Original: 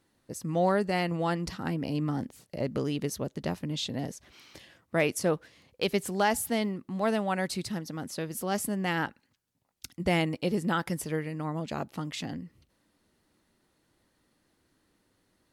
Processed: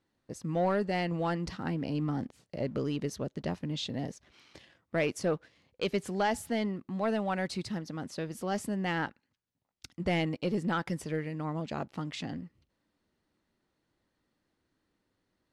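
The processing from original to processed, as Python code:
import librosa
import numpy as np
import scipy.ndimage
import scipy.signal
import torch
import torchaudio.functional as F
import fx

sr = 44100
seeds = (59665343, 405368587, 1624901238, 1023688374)

y = fx.leveller(x, sr, passes=1)
y = fx.air_absorb(y, sr, metres=65.0)
y = y * librosa.db_to_amplitude(-5.0)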